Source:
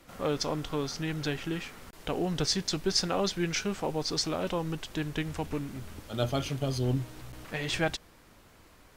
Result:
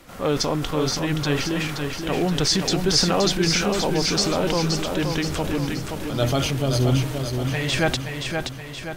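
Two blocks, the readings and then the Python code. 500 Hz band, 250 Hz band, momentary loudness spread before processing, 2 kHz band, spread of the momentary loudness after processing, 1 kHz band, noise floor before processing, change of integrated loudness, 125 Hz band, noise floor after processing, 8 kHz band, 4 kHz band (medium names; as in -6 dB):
+9.0 dB, +9.5 dB, 11 LU, +9.5 dB, 8 LU, +9.0 dB, -57 dBFS, +9.0 dB, +10.0 dB, -35 dBFS, +10.0 dB, +10.0 dB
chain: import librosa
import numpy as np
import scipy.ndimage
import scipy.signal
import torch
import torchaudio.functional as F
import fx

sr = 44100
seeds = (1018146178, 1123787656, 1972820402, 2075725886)

p1 = fx.transient(x, sr, attack_db=-2, sustain_db=6)
p2 = p1 + fx.echo_feedback(p1, sr, ms=524, feedback_pct=51, wet_db=-5.5, dry=0)
y = p2 * 10.0 ** (8.0 / 20.0)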